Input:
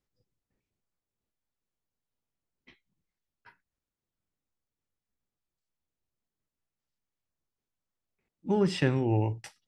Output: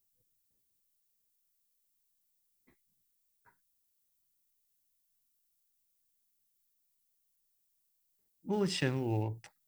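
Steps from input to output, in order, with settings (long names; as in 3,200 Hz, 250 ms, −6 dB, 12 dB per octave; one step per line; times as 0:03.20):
adaptive Wiener filter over 15 samples
background noise violet −71 dBFS
0:08.52–0:09.22: high-shelf EQ 2,700 Hz → 4,100 Hz +11.5 dB
level −6.5 dB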